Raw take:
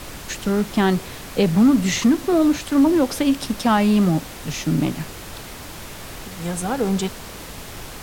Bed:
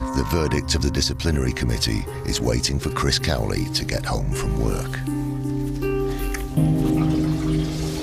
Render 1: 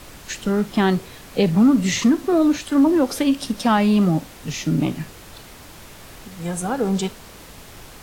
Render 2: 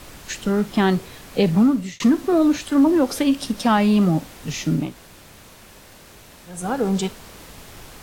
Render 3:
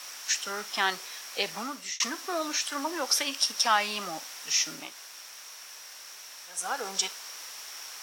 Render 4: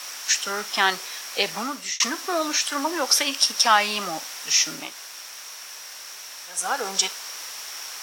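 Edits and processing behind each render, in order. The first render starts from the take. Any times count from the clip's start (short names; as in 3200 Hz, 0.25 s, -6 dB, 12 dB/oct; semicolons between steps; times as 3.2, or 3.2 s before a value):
noise print and reduce 6 dB
1.58–2 fade out; 4.85–6.57 room tone, crossfade 0.24 s
HPF 1100 Hz 12 dB/oct; bell 5600 Hz +14 dB 0.23 oct
gain +6.5 dB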